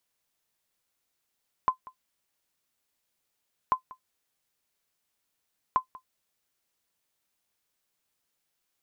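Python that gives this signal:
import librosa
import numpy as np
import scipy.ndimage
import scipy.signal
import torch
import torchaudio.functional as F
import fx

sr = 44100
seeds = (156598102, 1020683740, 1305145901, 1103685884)

y = fx.sonar_ping(sr, hz=1030.0, decay_s=0.1, every_s=2.04, pings=3, echo_s=0.19, echo_db=-21.5, level_db=-13.5)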